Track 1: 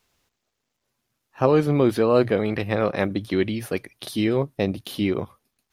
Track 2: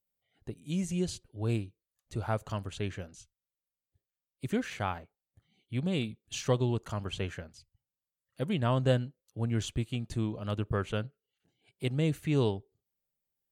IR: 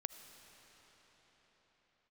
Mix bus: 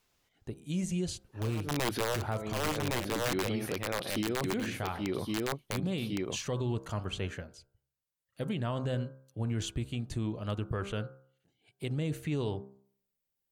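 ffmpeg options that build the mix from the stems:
-filter_complex "[0:a]aeval=exprs='(mod(3.98*val(0)+1,2)-1)/3.98':channel_layout=same,volume=-4.5dB,asplit=2[link_01][link_02];[link_02]volume=-7dB[link_03];[1:a]bandreject=frequency=66.33:width_type=h:width=4,bandreject=frequency=132.66:width_type=h:width=4,bandreject=frequency=198.99:width_type=h:width=4,bandreject=frequency=265.32:width_type=h:width=4,bandreject=frequency=331.65:width_type=h:width=4,bandreject=frequency=397.98:width_type=h:width=4,bandreject=frequency=464.31:width_type=h:width=4,bandreject=frequency=530.64:width_type=h:width=4,bandreject=frequency=596.97:width_type=h:width=4,bandreject=frequency=663.3:width_type=h:width=4,bandreject=frequency=729.63:width_type=h:width=4,bandreject=frequency=795.96:width_type=h:width=4,bandreject=frequency=862.29:width_type=h:width=4,bandreject=frequency=928.62:width_type=h:width=4,bandreject=frequency=994.95:width_type=h:width=4,bandreject=frequency=1061.28:width_type=h:width=4,bandreject=frequency=1127.61:width_type=h:width=4,bandreject=frequency=1193.94:width_type=h:width=4,bandreject=frequency=1260.27:width_type=h:width=4,bandreject=frequency=1326.6:width_type=h:width=4,bandreject=frequency=1392.93:width_type=h:width=4,bandreject=frequency=1459.26:width_type=h:width=4,bandreject=frequency=1525.59:width_type=h:width=4,bandreject=frequency=1591.92:width_type=h:width=4,volume=0.5dB,asplit=2[link_04][link_05];[link_05]apad=whole_len=252547[link_06];[link_01][link_06]sidechaincompress=threshold=-50dB:ratio=5:attack=16:release=123[link_07];[link_03]aecho=0:1:1113:1[link_08];[link_07][link_04][link_08]amix=inputs=3:normalize=0,alimiter=limit=-24dB:level=0:latency=1:release=40"

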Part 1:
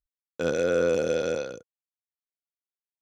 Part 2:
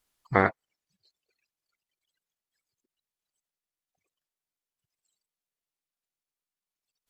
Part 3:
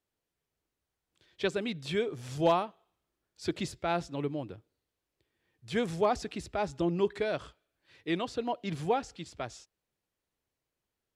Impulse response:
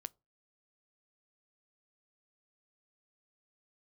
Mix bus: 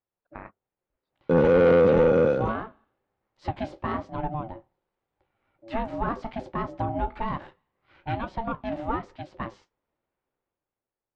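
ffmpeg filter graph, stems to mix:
-filter_complex "[0:a]equalizer=frequency=160:width=0.46:gain=11,adelay=900,volume=-2.5dB[link_01];[1:a]volume=-15.5dB,asplit=2[link_02][link_03];[link_03]volume=-14dB[link_04];[2:a]flanger=delay=8.7:depth=8.7:regen=-52:speed=1.2:shape=sinusoidal,volume=2dB,asplit=2[link_05][link_06];[link_06]volume=-15dB[link_07];[link_02][link_05]amix=inputs=2:normalize=0,aeval=exprs='val(0)*sin(2*PI*450*n/s)':channel_layout=same,acompressor=threshold=-35dB:ratio=3,volume=0dB[link_08];[3:a]atrim=start_sample=2205[link_09];[link_04][link_07]amix=inputs=2:normalize=0[link_10];[link_10][link_09]afir=irnorm=-1:irlink=0[link_11];[link_01][link_08][link_11]amix=inputs=3:normalize=0,lowpass=1900,dynaudnorm=framelen=100:gausssize=17:maxgain=10.5dB,asoftclip=type=tanh:threshold=-13dB"

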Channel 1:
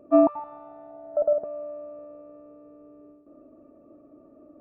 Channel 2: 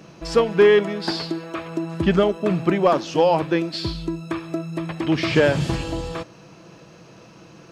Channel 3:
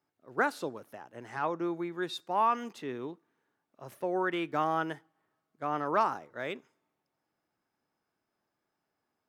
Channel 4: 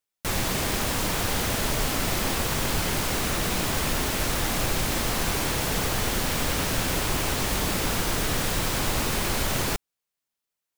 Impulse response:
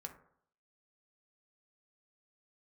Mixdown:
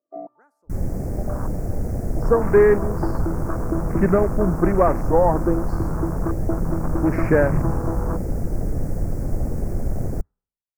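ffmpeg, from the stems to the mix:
-filter_complex "[0:a]highpass=frequency=910:poles=1,volume=-12.5dB,asplit=2[link_01][link_02];[link_02]volume=-3.5dB[link_03];[1:a]adelay=1950,volume=0dB[link_04];[2:a]volume=-13dB[link_05];[3:a]lowshelf=frequency=160:gain=10,adelay=450,volume=-2dB,asplit=2[link_06][link_07];[link_07]volume=-21dB[link_08];[4:a]atrim=start_sample=2205[link_09];[link_03][link_08]amix=inputs=2:normalize=0[link_10];[link_10][link_09]afir=irnorm=-1:irlink=0[link_11];[link_01][link_04][link_05][link_06][link_11]amix=inputs=5:normalize=0,afwtdn=0.0501,asuperstop=centerf=3300:order=4:qfactor=0.79"

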